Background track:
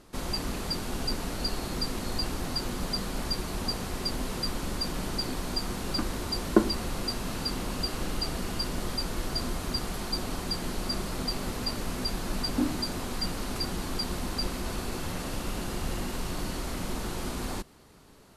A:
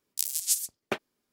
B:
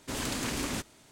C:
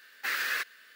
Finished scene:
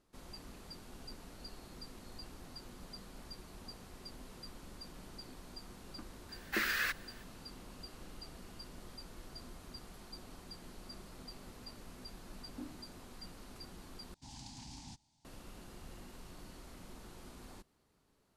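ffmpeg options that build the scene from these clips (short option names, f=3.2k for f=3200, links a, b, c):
-filter_complex "[0:a]volume=-19dB[a];[2:a]firequalizer=gain_entry='entry(140,0);entry(300,-9);entry(470,-29);entry(830,3);entry(1200,-19);entry(2200,-13);entry(4800,1);entry(14000,-23)':delay=0.05:min_phase=1[b];[a]asplit=2[c][d];[c]atrim=end=14.144[e];[b]atrim=end=1.11,asetpts=PTS-STARTPTS,volume=-12.5dB[f];[d]atrim=start=15.246[g];[3:a]atrim=end=0.95,asetpts=PTS-STARTPTS,volume=-3.5dB,afade=t=in:d=0.004:c=hsin,afade=t=out:st=0.946:d=0.004:c=hsin,adelay=6290[h];[e][f]acrossfade=d=0.004:c1=hsin:c2=hsin[i];[i][g]acrossfade=d=0.004:c1=hsin:c2=hsin[j];[j][h]amix=inputs=2:normalize=0"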